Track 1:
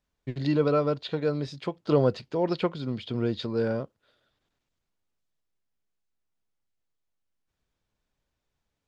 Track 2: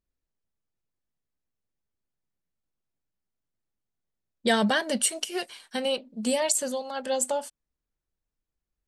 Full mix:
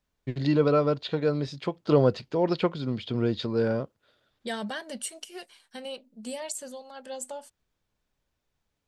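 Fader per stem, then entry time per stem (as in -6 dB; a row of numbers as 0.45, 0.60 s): +1.5, -10.5 dB; 0.00, 0.00 s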